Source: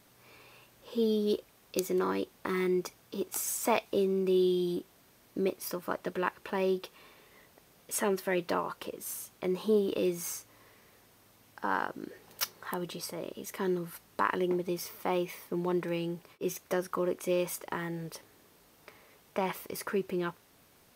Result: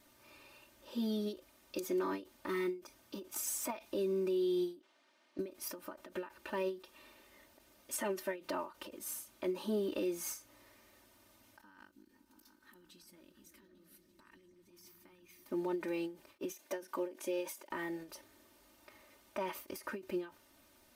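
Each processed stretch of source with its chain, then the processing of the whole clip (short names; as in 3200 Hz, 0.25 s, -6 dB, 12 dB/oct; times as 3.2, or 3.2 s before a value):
4.8–5.39 BPF 250–4100 Hz + low shelf 480 Hz -10.5 dB
11.61–15.46 passive tone stack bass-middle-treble 6-0-2 + negative-ratio compressor -58 dBFS + repeats that get brighter 0.17 s, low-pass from 200 Hz, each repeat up 1 oct, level -3 dB
16.51–17.71 HPF 250 Hz + notch 1300 Hz, Q 5.6
whole clip: comb 3.3 ms, depth 97%; limiter -21.5 dBFS; ending taper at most 180 dB/s; gain -6 dB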